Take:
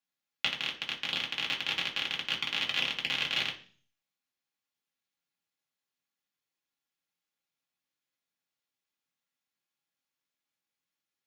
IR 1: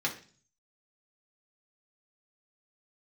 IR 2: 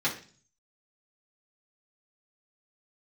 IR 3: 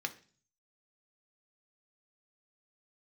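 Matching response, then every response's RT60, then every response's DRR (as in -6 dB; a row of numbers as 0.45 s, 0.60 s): 1; 0.40 s, 0.40 s, 0.40 s; -2.5 dB, -7.5 dB, 5.5 dB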